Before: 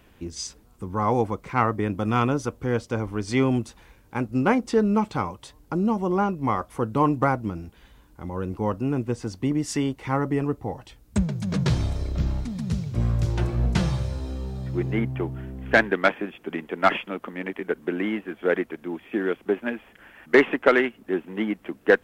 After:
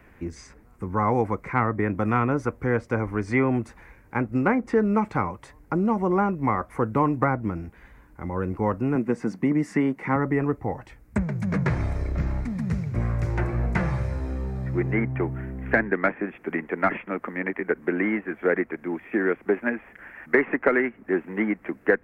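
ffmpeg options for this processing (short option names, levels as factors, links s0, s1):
-filter_complex "[0:a]asettb=1/sr,asplit=3[s0][s1][s2];[s0]atrim=end=8.954[s3];[s1]atrim=start=8.95:end=10.16,asetpts=PTS-STARTPTS,afade=t=in:d=0.004:c=qsin,afade=t=out:st=1.206:d=0.004:c=qsin,lowshelf=f=120:t=q:w=3:g=-13.5[s4];[s2]atrim=start=10.156[s5];[s3][s4]acrossfade=d=0.004:c1=hsin:c2=qsin[s6];[s6][s5]acrossfade=d=0.004:c1=qsin:c2=hsin,highshelf=f=2600:t=q:w=3:g=-7.5,acrossover=split=380|2700[s7][s8][s9];[s7]acompressor=threshold=0.0631:ratio=4[s10];[s8]acompressor=threshold=0.0708:ratio=4[s11];[s9]acompressor=threshold=0.00282:ratio=4[s12];[s10][s11][s12]amix=inputs=3:normalize=0,volume=1.26"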